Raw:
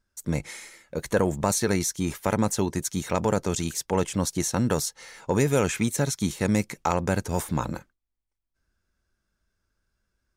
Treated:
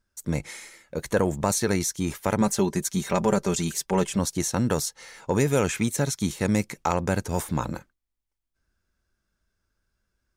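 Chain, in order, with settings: 2.4–4.19 comb 5.1 ms, depth 64%

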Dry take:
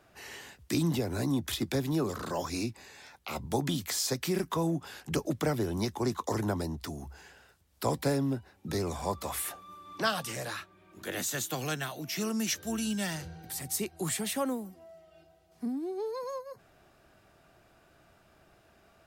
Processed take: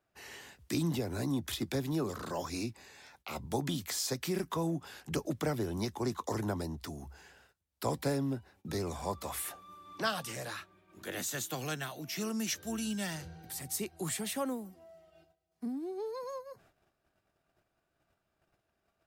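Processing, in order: gate -59 dBFS, range -15 dB; gain -3.5 dB

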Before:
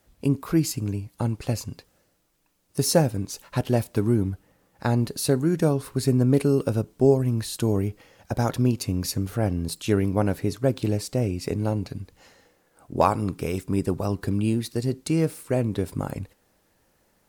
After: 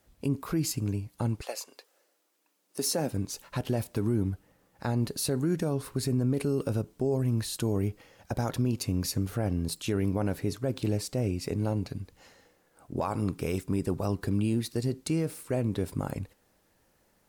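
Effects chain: 1.42–3.12 HPF 530 Hz -> 170 Hz 24 dB/oct; limiter -17 dBFS, peak gain reduction 10.5 dB; gain -2.5 dB

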